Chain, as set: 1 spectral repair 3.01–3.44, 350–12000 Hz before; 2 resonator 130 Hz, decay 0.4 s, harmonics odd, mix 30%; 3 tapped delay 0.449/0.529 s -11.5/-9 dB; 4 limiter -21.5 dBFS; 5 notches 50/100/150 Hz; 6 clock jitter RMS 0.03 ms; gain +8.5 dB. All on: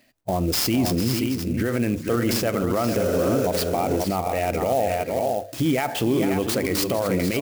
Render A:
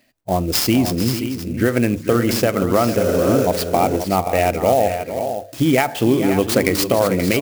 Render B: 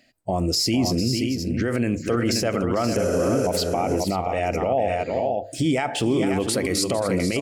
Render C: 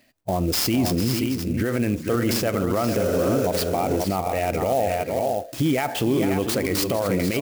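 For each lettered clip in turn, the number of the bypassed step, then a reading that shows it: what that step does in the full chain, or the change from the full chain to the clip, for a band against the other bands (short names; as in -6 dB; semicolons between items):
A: 4, mean gain reduction 3.5 dB; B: 6, 4 kHz band +2.5 dB; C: 5, crest factor change -1.5 dB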